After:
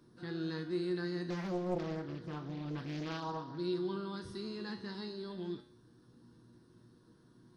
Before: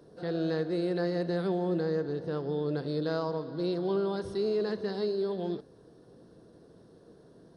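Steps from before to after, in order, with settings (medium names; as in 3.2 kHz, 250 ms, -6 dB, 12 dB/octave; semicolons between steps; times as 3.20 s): high-order bell 560 Hz -14 dB 1.1 oct; feedback comb 120 Hz, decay 0.48 s, harmonics all, mix 80%; 1.30–3.58 s: loudspeaker Doppler distortion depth 0.8 ms; trim +6 dB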